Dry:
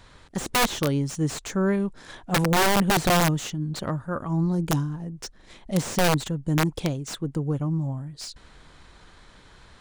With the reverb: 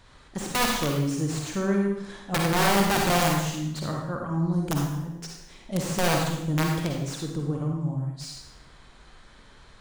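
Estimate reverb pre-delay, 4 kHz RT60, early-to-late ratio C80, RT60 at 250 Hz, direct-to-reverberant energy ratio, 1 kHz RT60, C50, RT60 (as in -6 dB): 39 ms, 0.75 s, 4.0 dB, 0.80 s, -0.5 dB, 0.80 s, 1.0 dB, 0.80 s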